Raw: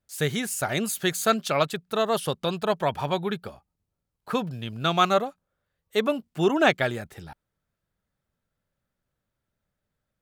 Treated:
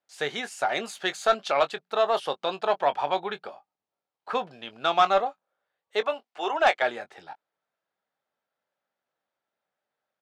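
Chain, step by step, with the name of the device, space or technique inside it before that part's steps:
0:06.01–0:06.82: high-pass filter 540 Hz 12 dB per octave
intercom (band-pass filter 450–4,500 Hz; parametric band 780 Hz +6.5 dB 0.51 octaves; soft clipping −10 dBFS, distortion −20 dB; double-tracking delay 21 ms −11.5 dB)

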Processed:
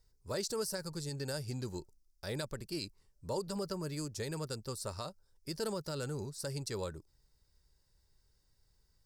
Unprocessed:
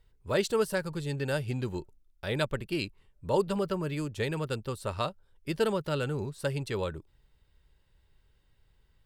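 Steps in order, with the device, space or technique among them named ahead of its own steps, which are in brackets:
over-bright horn tweeter (high shelf with overshoot 4,000 Hz +9 dB, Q 3; brickwall limiter −21 dBFS, peak gain reduction 9 dB)
level −6.5 dB

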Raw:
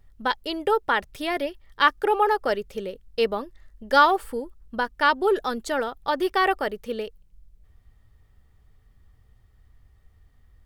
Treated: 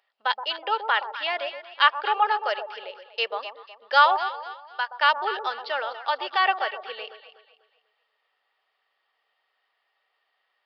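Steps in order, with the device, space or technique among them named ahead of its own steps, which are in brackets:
0:04.27–0:05.00: high-pass filter 860 Hz 12 dB per octave
musical greeting card (downsampling to 11,025 Hz; high-pass filter 620 Hz 24 dB per octave; parametric band 2,800 Hz +7 dB 0.35 octaves)
delay that swaps between a low-pass and a high-pass 123 ms, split 1,000 Hz, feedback 57%, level −7.5 dB

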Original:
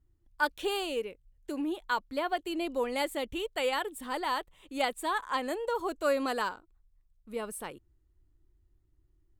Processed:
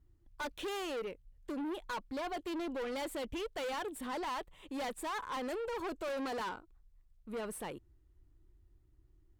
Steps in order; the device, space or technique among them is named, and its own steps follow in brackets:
tube preamp driven hard (tube saturation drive 39 dB, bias 0.2; high-shelf EQ 4,200 Hz −6 dB)
level +3.5 dB

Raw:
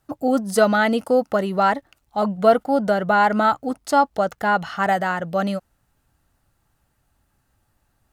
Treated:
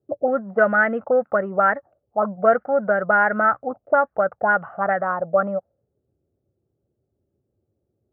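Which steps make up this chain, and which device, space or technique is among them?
envelope filter bass rig (envelope-controlled low-pass 380–1,700 Hz up, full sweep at −15 dBFS; loudspeaker in its box 77–2,200 Hz, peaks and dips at 170 Hz −3 dB, 280 Hz −7 dB, 560 Hz +6 dB, 940 Hz −8 dB, 1,900 Hz −3 dB)
level −4 dB

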